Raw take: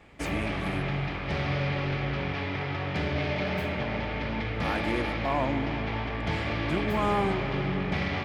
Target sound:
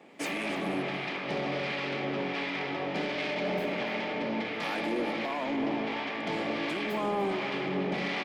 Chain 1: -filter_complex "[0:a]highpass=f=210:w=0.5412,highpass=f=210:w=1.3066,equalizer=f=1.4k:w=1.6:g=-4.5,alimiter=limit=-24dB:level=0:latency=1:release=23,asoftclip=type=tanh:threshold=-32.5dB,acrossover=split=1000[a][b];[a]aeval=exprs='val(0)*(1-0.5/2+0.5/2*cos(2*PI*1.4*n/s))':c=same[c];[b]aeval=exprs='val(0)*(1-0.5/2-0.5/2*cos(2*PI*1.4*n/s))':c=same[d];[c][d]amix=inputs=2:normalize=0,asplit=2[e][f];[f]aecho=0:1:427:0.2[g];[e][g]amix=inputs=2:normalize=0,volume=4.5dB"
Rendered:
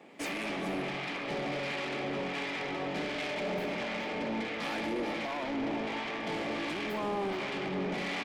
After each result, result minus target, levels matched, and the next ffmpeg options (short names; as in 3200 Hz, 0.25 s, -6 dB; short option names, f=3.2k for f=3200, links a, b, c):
echo 0.131 s late; soft clip: distortion +10 dB
-filter_complex "[0:a]highpass=f=210:w=0.5412,highpass=f=210:w=1.3066,equalizer=f=1.4k:w=1.6:g=-4.5,alimiter=limit=-24dB:level=0:latency=1:release=23,asoftclip=type=tanh:threshold=-32.5dB,acrossover=split=1000[a][b];[a]aeval=exprs='val(0)*(1-0.5/2+0.5/2*cos(2*PI*1.4*n/s))':c=same[c];[b]aeval=exprs='val(0)*(1-0.5/2-0.5/2*cos(2*PI*1.4*n/s))':c=same[d];[c][d]amix=inputs=2:normalize=0,asplit=2[e][f];[f]aecho=0:1:296:0.2[g];[e][g]amix=inputs=2:normalize=0,volume=4.5dB"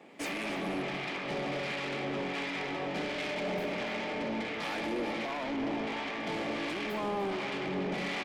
soft clip: distortion +10 dB
-filter_complex "[0:a]highpass=f=210:w=0.5412,highpass=f=210:w=1.3066,equalizer=f=1.4k:w=1.6:g=-4.5,alimiter=limit=-24dB:level=0:latency=1:release=23,asoftclip=type=tanh:threshold=-24.5dB,acrossover=split=1000[a][b];[a]aeval=exprs='val(0)*(1-0.5/2+0.5/2*cos(2*PI*1.4*n/s))':c=same[c];[b]aeval=exprs='val(0)*(1-0.5/2-0.5/2*cos(2*PI*1.4*n/s))':c=same[d];[c][d]amix=inputs=2:normalize=0,asplit=2[e][f];[f]aecho=0:1:296:0.2[g];[e][g]amix=inputs=2:normalize=0,volume=4.5dB"